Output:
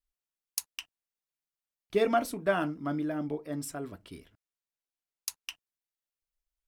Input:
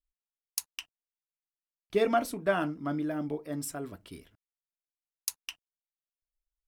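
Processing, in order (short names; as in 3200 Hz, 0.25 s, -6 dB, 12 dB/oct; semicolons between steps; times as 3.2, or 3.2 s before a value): 3.04–5.44 high shelf 9000 Hz -5.5 dB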